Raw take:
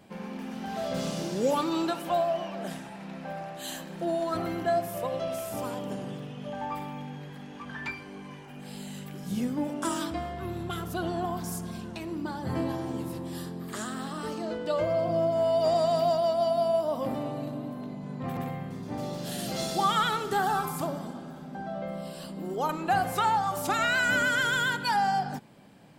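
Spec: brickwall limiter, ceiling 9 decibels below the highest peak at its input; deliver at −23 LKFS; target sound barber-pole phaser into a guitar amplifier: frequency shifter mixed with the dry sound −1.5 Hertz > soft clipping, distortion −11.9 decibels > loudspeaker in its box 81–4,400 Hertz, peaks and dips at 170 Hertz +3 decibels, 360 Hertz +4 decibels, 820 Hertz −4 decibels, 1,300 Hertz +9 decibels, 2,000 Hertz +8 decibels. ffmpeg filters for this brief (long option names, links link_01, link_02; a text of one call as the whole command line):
ffmpeg -i in.wav -filter_complex "[0:a]alimiter=limit=-23.5dB:level=0:latency=1,asplit=2[link_01][link_02];[link_02]afreqshift=-1.5[link_03];[link_01][link_03]amix=inputs=2:normalize=1,asoftclip=threshold=-34dB,highpass=81,equalizer=frequency=170:width_type=q:width=4:gain=3,equalizer=frequency=360:width_type=q:width=4:gain=4,equalizer=frequency=820:width_type=q:width=4:gain=-4,equalizer=frequency=1300:width_type=q:width=4:gain=9,equalizer=frequency=2000:width_type=q:width=4:gain=8,lowpass=frequency=4400:width=0.5412,lowpass=frequency=4400:width=1.3066,volume=15dB" out.wav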